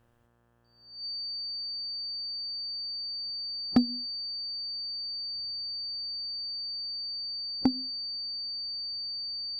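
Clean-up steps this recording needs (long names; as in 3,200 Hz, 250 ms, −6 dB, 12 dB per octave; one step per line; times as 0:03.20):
clipped peaks rebuilt −12.5 dBFS
hum removal 118.5 Hz, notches 15
notch filter 4,600 Hz, Q 30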